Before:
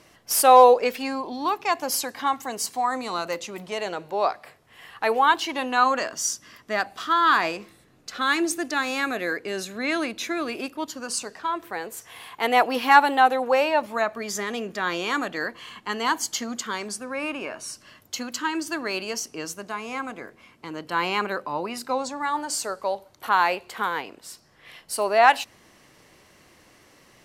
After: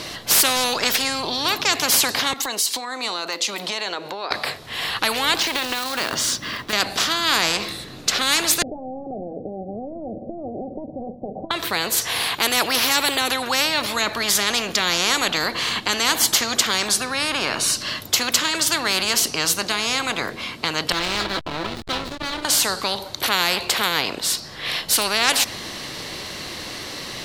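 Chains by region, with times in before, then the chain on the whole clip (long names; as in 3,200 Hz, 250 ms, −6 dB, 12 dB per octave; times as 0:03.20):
0:02.33–0:04.31: high-pass filter 310 Hz + downward compressor 4 to 1, threshold −41 dBFS + multiband upward and downward expander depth 70%
0:05.38–0:06.73: bass and treble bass +1 dB, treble −14 dB + downward compressor 8 to 1, threshold −31 dBFS + floating-point word with a short mantissa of 2 bits
0:08.62–0:11.51: downward compressor 4 to 1, threshold −33 dBFS + leveller curve on the samples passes 2 + Chebyshev low-pass with heavy ripple 790 Hz, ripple 9 dB
0:20.92–0:22.45: tuned comb filter 330 Hz, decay 0.25 s, mix 90% + hollow resonant body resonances 200/320/1,300 Hz, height 12 dB, ringing for 20 ms + slack as between gear wheels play −32 dBFS
whole clip: parametric band 4,000 Hz +12 dB 0.69 octaves; every bin compressed towards the loudest bin 4 to 1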